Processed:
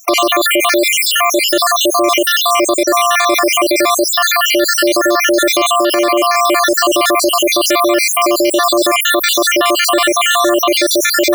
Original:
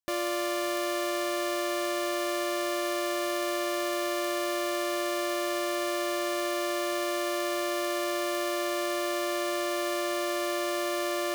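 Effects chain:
time-frequency cells dropped at random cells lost 72%
0:05.67–0:06.35: elliptic high-pass filter 250 Hz
boost into a limiter +31 dB
envelope flattener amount 50%
level −3.5 dB

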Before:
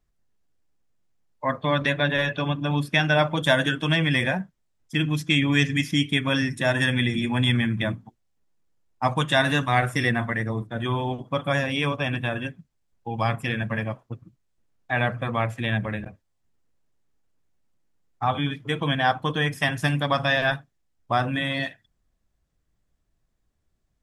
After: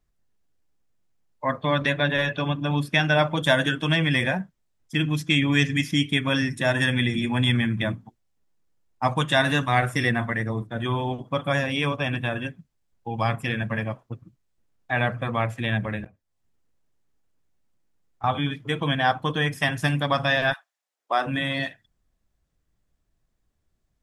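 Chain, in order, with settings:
0:16.06–0:18.24: downward compressor 3 to 1, threshold −53 dBFS, peak gain reduction 18 dB
0:20.52–0:21.26: high-pass filter 970 Hz → 270 Hz 24 dB per octave

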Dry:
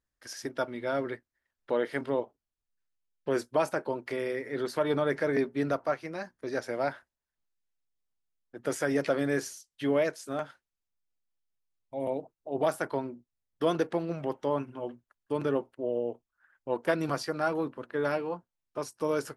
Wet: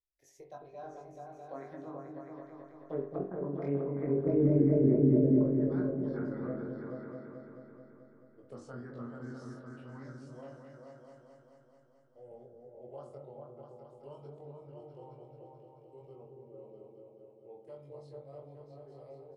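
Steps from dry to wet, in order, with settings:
source passing by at 0:04.48, 40 m/s, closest 26 metres
treble cut that deepens with the level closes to 370 Hz, closed at −31 dBFS
phaser swept by the level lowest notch 200 Hz, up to 1,200 Hz, full sweep at −33 dBFS
tilt shelving filter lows +6 dB, about 730 Hz
double-tracking delay 22 ms −3 dB
echo whose low-pass opens from repeat to repeat 217 ms, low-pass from 400 Hz, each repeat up 2 octaves, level 0 dB
convolution reverb, pre-delay 42 ms, DRR 6.5 dB

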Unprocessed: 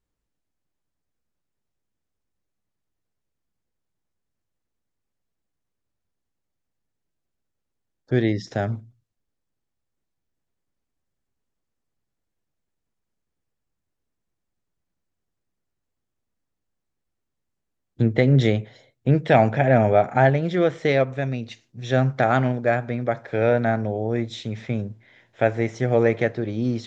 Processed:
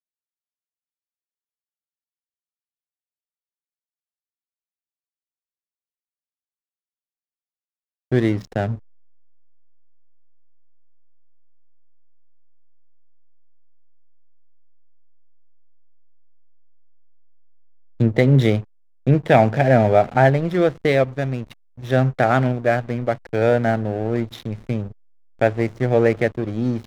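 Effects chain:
slack as between gear wheels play −29.5 dBFS
level +2.5 dB

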